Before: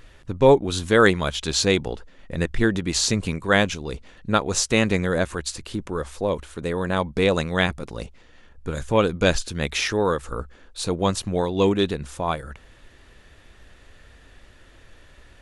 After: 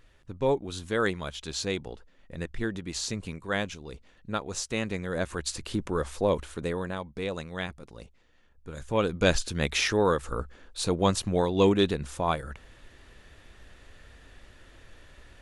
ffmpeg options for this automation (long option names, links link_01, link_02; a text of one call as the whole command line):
ffmpeg -i in.wav -af "volume=10dB,afade=type=in:start_time=5.05:duration=0.61:silence=0.316228,afade=type=out:start_time=6.47:duration=0.52:silence=0.251189,afade=type=in:start_time=8.68:duration=0.77:silence=0.281838" out.wav